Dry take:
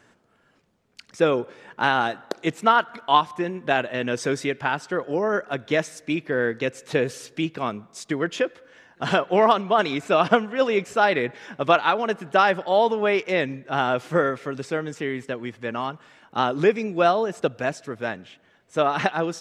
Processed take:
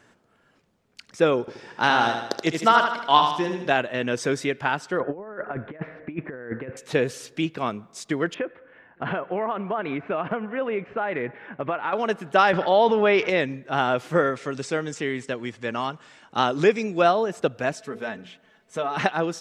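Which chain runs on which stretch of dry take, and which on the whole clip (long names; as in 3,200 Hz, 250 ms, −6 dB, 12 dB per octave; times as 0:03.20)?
0:01.40–0:03.70: parametric band 5,200 Hz +11 dB 0.6 octaves + repeating echo 77 ms, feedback 52%, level −6 dB
0:05.00–0:06.77: inverse Chebyshev low-pass filter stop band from 6,400 Hz, stop band 60 dB + compressor whose output falls as the input rises −30 dBFS, ratio −0.5
0:08.34–0:11.93: low-pass filter 2,400 Hz 24 dB per octave + downward compressor 4 to 1, threshold −23 dBFS
0:12.53–0:13.30: low-pass filter 5,400 Hz 24 dB per octave + envelope flattener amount 50%
0:14.36–0:17.02: low-pass filter 8,600 Hz 24 dB per octave + high-shelf EQ 5,200 Hz +11 dB
0:17.73–0:18.97: mains-hum notches 60/120/180/240/300/360/420/480 Hz + comb filter 4.6 ms, depth 54% + downward compressor 2 to 1, threshold −28 dBFS
whole clip: no processing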